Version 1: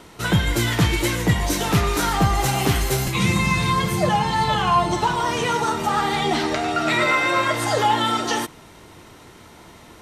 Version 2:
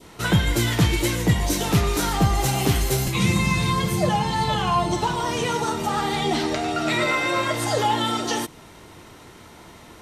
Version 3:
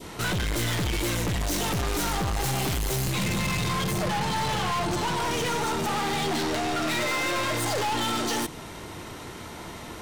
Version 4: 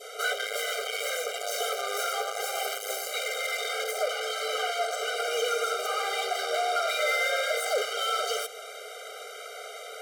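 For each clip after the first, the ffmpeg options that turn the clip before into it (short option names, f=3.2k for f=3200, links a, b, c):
-af "adynamicequalizer=threshold=0.02:dfrequency=1400:dqfactor=0.72:tfrequency=1400:tqfactor=0.72:attack=5:release=100:ratio=0.375:range=2.5:mode=cutabove:tftype=bell"
-af "aeval=exprs='(tanh(39.8*val(0)+0.25)-tanh(0.25))/39.8':c=same,volume=6.5dB"
-filter_complex "[0:a]acrossover=split=2300[a][b];[b]asoftclip=type=tanh:threshold=-29.5dB[c];[a][c]amix=inputs=2:normalize=0,afftfilt=real='re*eq(mod(floor(b*sr/1024/400),2),1)':imag='im*eq(mod(floor(b*sr/1024/400),2),1)':win_size=1024:overlap=0.75,volume=3.5dB"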